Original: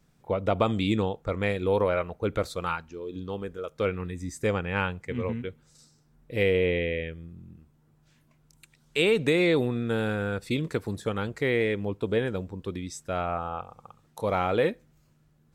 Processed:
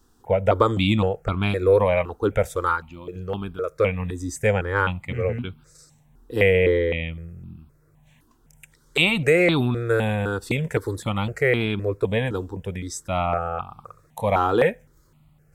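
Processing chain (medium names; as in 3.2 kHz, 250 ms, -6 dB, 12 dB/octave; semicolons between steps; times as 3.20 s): stepped phaser 3.9 Hz 600–1900 Hz; trim +9 dB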